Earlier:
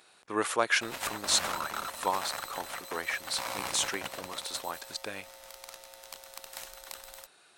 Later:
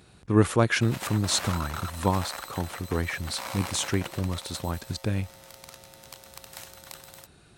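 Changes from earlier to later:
speech: remove HPF 650 Hz 12 dB/oct; master: add HPF 84 Hz 12 dB/oct

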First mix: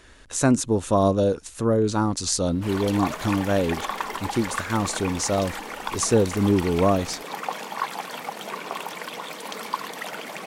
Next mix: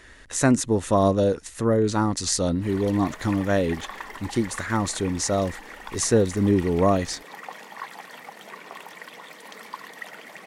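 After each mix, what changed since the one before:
background -9.5 dB; master: add bell 1900 Hz +10 dB 0.25 oct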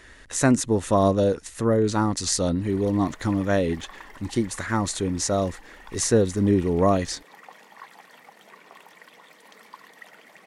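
background -8.0 dB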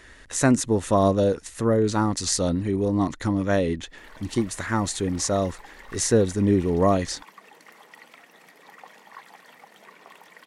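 background: entry +1.35 s

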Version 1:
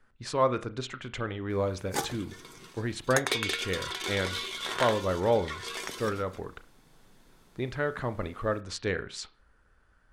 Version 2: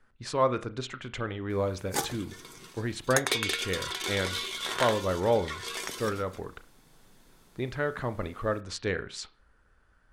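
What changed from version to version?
background: add high shelf 5800 Hz +5 dB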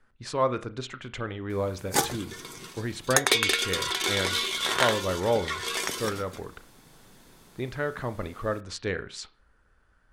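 background +6.0 dB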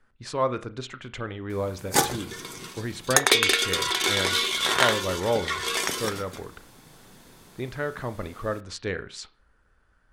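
background: send on

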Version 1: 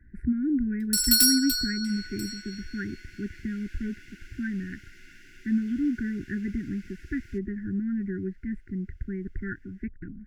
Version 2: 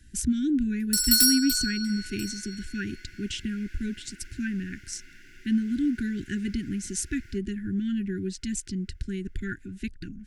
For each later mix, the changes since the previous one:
speech: remove elliptic low-pass 2000 Hz, stop band 40 dB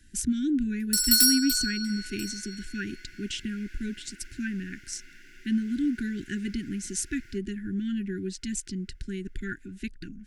master: add bell 78 Hz -8.5 dB 1.7 oct

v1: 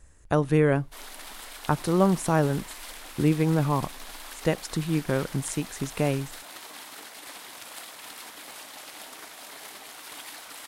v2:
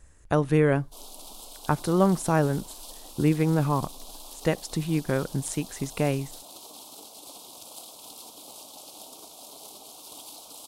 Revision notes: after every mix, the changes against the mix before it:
background: add Butterworth band-stop 1800 Hz, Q 0.68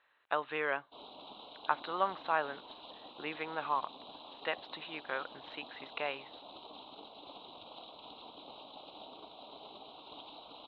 speech: add HPF 960 Hz 12 dB/oct; master: add rippled Chebyshev low-pass 4000 Hz, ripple 3 dB

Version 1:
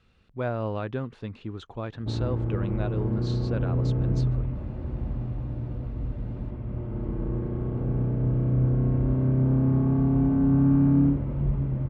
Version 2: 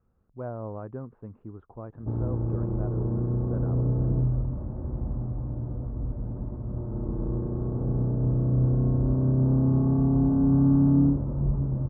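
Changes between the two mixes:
speech -6.0 dB; master: add LPF 1200 Hz 24 dB/oct

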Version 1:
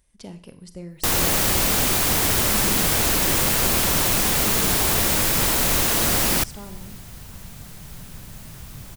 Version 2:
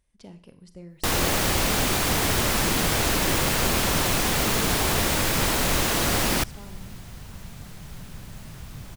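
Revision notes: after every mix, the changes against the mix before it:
speech -6.0 dB; master: add high shelf 7400 Hz -9 dB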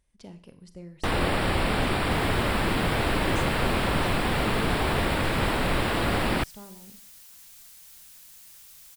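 first sound: add running mean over 7 samples; second sound: add differentiator

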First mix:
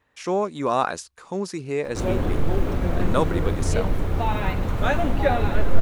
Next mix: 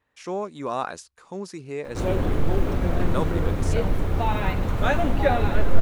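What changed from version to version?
speech -6.0 dB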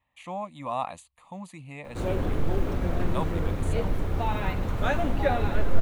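speech: add fixed phaser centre 1500 Hz, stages 6; background -4.0 dB

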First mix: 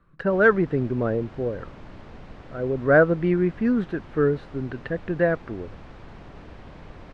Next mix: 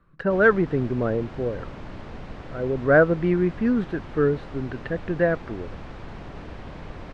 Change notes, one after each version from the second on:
background +5.0 dB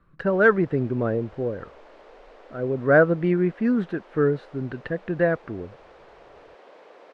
background: add ladder high-pass 400 Hz, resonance 45%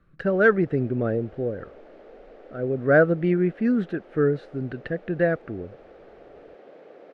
background: add tilt -3.5 dB/oct; master: add bell 990 Hz -12 dB 0.37 oct

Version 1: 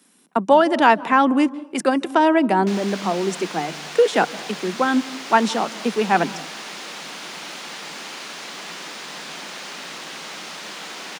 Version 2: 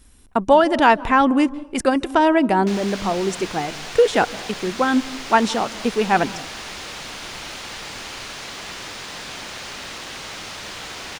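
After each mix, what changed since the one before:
master: remove Chebyshev high-pass 150 Hz, order 10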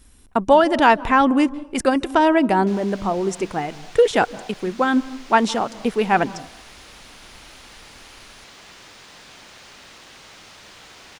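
background -11.0 dB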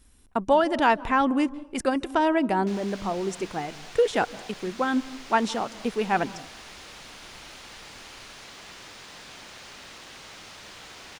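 speech -6.5 dB

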